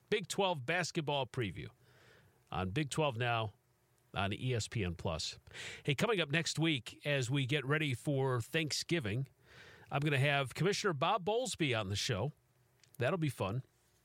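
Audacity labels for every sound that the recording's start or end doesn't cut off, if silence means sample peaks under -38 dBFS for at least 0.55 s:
2.530000	3.480000	sound
4.140000	9.230000	sound
9.920000	12.290000	sound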